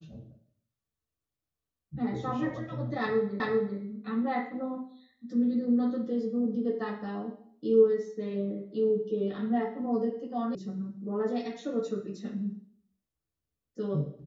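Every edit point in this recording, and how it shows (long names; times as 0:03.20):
0:03.40: the same again, the last 0.39 s
0:10.55: cut off before it has died away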